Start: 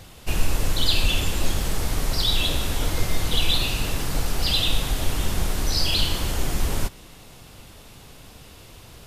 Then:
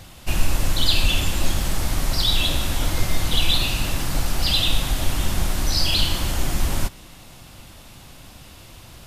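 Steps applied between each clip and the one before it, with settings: bell 440 Hz -11 dB 0.21 oct; gain +2 dB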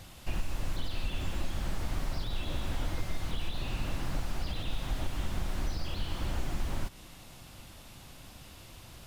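compressor, threshold -20 dBFS, peak gain reduction 10.5 dB; slew limiter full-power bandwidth 45 Hz; gain -6.5 dB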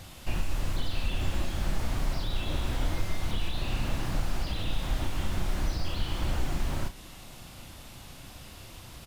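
doubler 33 ms -7 dB; gain +3 dB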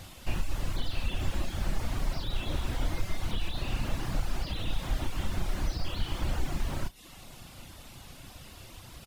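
reverb removal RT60 0.61 s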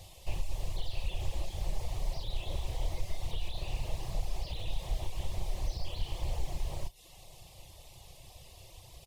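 fixed phaser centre 600 Hz, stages 4; Doppler distortion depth 0.4 ms; gain -2.5 dB

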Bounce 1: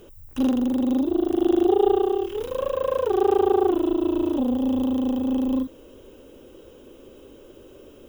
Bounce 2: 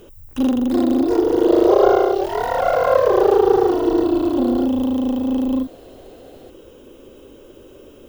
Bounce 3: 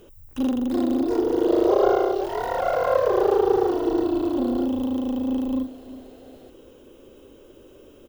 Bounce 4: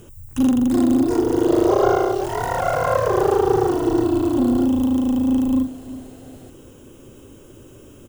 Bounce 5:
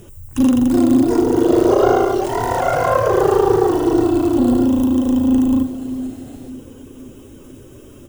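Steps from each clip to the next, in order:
echoes that change speed 0.44 s, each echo +5 st, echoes 2; gain +3.5 dB
feedback echo 0.365 s, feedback 39%, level -17.5 dB; gain -5.5 dB
graphic EQ 125/500/4000/8000 Hz +11/-7/-6/+10 dB; gain +6 dB
bin magnitudes rounded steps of 15 dB; split-band echo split 420 Hz, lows 0.492 s, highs 94 ms, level -14 dB; gain +3.5 dB

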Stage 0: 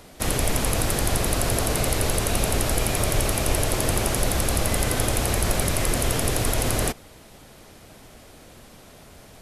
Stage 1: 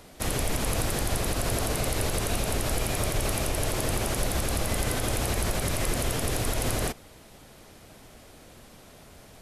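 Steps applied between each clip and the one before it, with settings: limiter -13.5 dBFS, peak gain reduction 6.5 dB; gain -3 dB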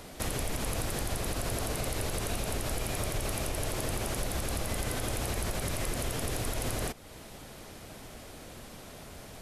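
compressor 2:1, threshold -40 dBFS, peak gain reduction 10 dB; gain +3.5 dB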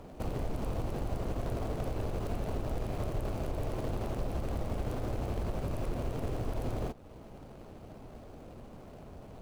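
median filter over 25 samples

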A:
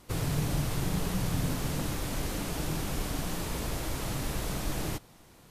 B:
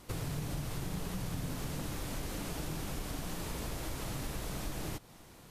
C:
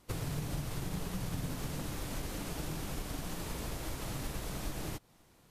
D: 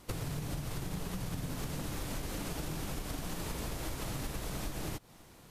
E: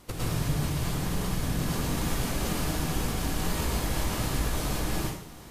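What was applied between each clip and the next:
compressor 3:1, threshold -38 dBFS, peak gain reduction 10.5 dB; gain +1 dB
upward expander 1.5:1, over -55 dBFS; gain +1.5 dB
compressor, threshold -42 dBFS, peak gain reduction 10 dB; gain +7.5 dB
plate-style reverb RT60 0.67 s, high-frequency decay 0.9×, pre-delay 95 ms, DRR -6.5 dB; gain +2 dB

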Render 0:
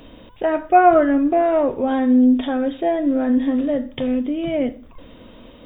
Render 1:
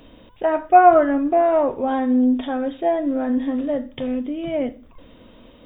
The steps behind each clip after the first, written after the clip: dynamic EQ 910 Hz, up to +7 dB, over -29 dBFS, Q 1.1; gain -4 dB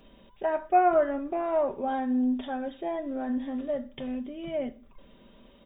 comb 5.1 ms, depth 54%; gain -9 dB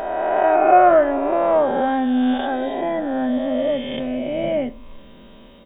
spectral swells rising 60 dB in 2.24 s; gain +7 dB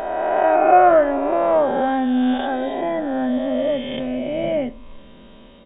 downsampling 11025 Hz

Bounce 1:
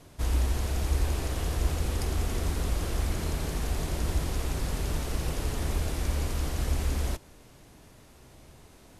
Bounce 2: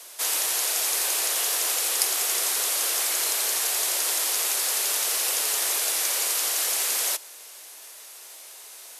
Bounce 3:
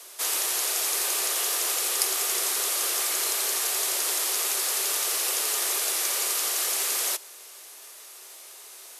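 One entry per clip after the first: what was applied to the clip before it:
HPF 410 Hz 24 dB/oct; tilt +4.5 dB/oct; gain +5.5 dB
small resonant body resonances 380/1200 Hz, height 7 dB; gain -1.5 dB

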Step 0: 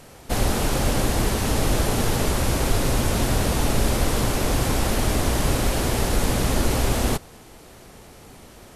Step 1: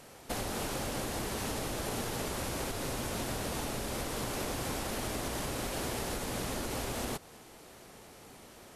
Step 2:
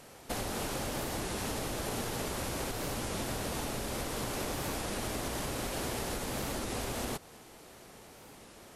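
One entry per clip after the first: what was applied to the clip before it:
low shelf 200 Hz -4 dB; compressor, threshold -25 dBFS, peak gain reduction 8.5 dB; low shelf 77 Hz -8 dB; gain -5.5 dB
record warp 33 1/3 rpm, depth 160 cents

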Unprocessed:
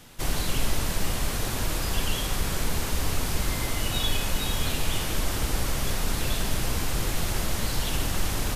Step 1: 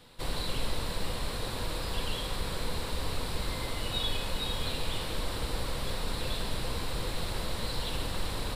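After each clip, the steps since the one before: thirty-one-band EQ 500 Hz +8 dB, 1000 Hz +5 dB, 4000 Hz +9 dB, 6300 Hz -11 dB, 12500 Hz -10 dB; gain -7 dB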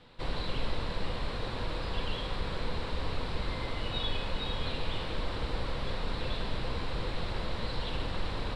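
LPF 3600 Hz 12 dB/oct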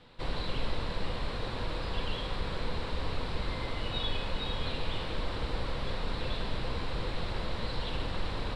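nothing audible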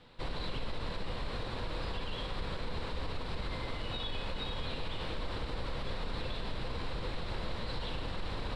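limiter -26 dBFS, peak gain reduction 7 dB; gain -1.5 dB

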